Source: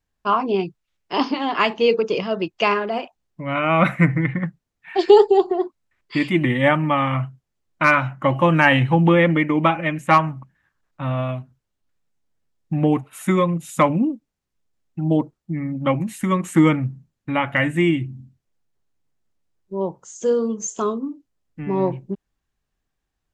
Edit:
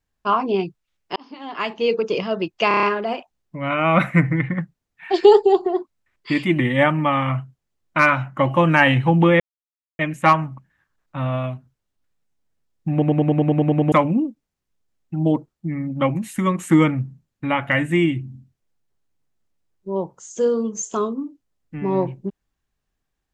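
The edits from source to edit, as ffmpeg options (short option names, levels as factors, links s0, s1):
-filter_complex "[0:a]asplit=19[s0][s1][s2][s3][s4][s5][s6][s7][s8][s9][s10][s11][s12][s13][s14][s15][s16][s17][s18];[s0]atrim=end=1.16,asetpts=PTS-STARTPTS,afade=t=out:st=1.156:d=0.004:c=hsin[s19];[s1]atrim=start=1.16:end=2.712,asetpts=PTS-STARTPTS,afade=t=in:d=1[s20];[s2]atrim=start=2.678:end=2.712[s21];[s3]atrim=start=2.678:end=2.712[s22];[s4]atrim=start=2.678:end=2.712[s23];[s5]atrim=start=2.678:end=2.712[s24];[s6]atrim=start=2.678:end=9.25,asetpts=PTS-STARTPTS,afade=t=out:st=6.568:d=0.004:c=hsin[s25];[s7]atrim=start=9.25:end=9.84,asetpts=PTS-STARTPTS,volume=0[s26];[s8]atrim=start=9.84:end=12.872,asetpts=PTS-STARTPTS,afade=t=in:d=0.004:c=hsin[s27];[s9]atrim=start=12.768:end=12.872[s28];[s10]atrim=start=12.768:end=12.872[s29];[s11]atrim=start=12.768:end=12.872[s30];[s12]atrim=start=12.768:end=12.872[s31];[s13]atrim=start=12.768:end=12.872[s32];[s14]atrim=start=12.768:end=12.872[s33];[s15]atrim=start=12.768:end=12.872[s34];[s16]atrim=start=12.768:end=12.872[s35];[s17]atrim=start=12.768:end=12.872[s36];[s18]atrim=start=13.768[s37];[s19][s20]concat=n=2:v=0:a=1[s38];[s38][s21]acrossfade=d=0.004:c1=hsin:c2=hsin[s39];[s39][s22]acrossfade=d=0.004:c1=hsin:c2=hsin[s40];[s40][s23]acrossfade=d=0.004:c1=hsin:c2=hsin[s41];[s41][s24]acrossfade=d=0.004:c1=hsin:c2=hsin[s42];[s25][s26][s27]concat=n=3:v=0:a=1[s43];[s42][s43]acrossfade=d=0.004:c1=hsin:c2=hsin[s44];[s44][s28]acrossfade=d=0.004:c1=hsin:c2=hsin[s45];[s45][s29]acrossfade=d=0.004:c1=hsin:c2=hsin[s46];[s46][s30]acrossfade=d=0.004:c1=hsin:c2=hsin[s47];[s47][s31]acrossfade=d=0.004:c1=hsin:c2=hsin[s48];[s48][s32]acrossfade=d=0.004:c1=hsin:c2=hsin[s49];[s49][s33]acrossfade=d=0.004:c1=hsin:c2=hsin[s50];[s50][s34]acrossfade=d=0.004:c1=hsin:c2=hsin[s51];[s51][s35]acrossfade=d=0.004:c1=hsin:c2=hsin[s52];[s52][s36]acrossfade=d=0.004:c1=hsin:c2=hsin[s53];[s53][s37]acrossfade=d=0.004:c1=hsin:c2=hsin"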